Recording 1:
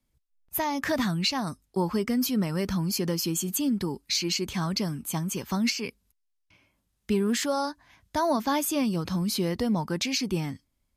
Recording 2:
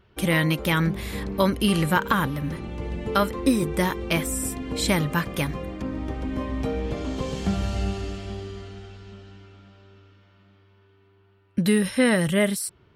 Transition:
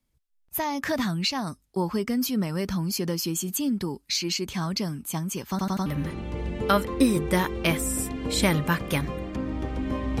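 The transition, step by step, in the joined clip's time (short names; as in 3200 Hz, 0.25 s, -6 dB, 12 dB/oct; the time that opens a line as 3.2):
recording 1
5.5 stutter in place 0.09 s, 4 plays
5.86 switch to recording 2 from 2.32 s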